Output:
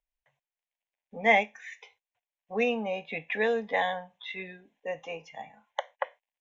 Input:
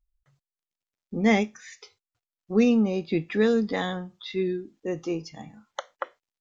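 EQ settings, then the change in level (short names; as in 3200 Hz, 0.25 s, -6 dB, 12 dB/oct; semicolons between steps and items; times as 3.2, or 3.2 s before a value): three-band isolator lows -22 dB, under 360 Hz, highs -23 dB, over 6300 Hz; high shelf 6000 Hz -6 dB; fixed phaser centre 1300 Hz, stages 6; +5.5 dB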